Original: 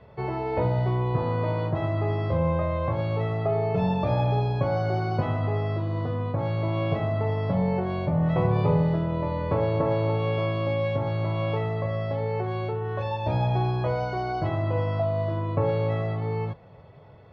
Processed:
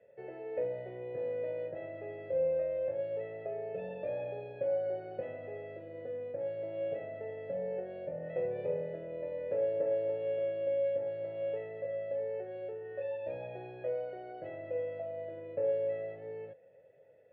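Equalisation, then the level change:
formant filter e
high-frequency loss of the air 240 metres
0.0 dB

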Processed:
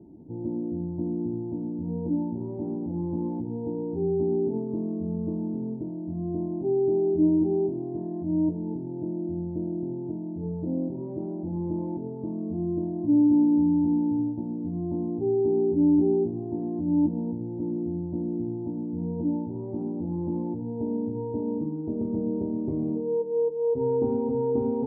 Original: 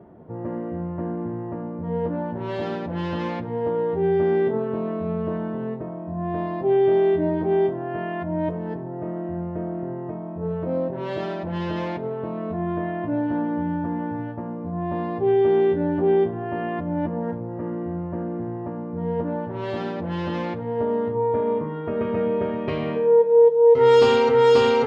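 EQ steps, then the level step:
formant resonators in series u
spectral tilt −3.5 dB per octave
0.0 dB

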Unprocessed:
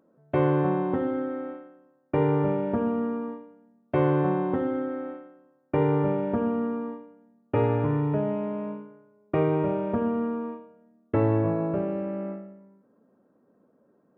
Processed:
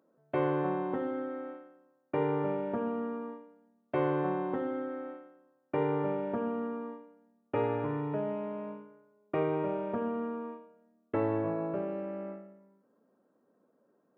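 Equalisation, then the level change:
high-pass filter 320 Hz 6 dB per octave
−4.0 dB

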